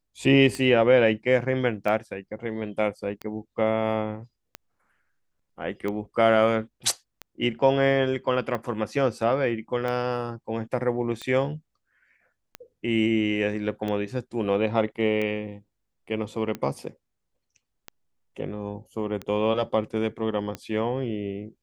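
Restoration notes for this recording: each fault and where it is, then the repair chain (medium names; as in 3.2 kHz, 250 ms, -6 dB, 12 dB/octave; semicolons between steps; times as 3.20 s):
tick 45 rpm -18 dBFS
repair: de-click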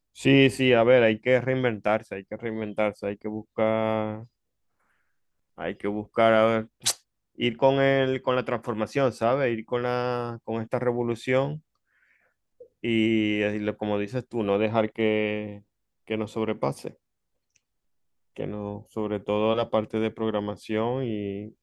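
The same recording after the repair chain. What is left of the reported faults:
nothing left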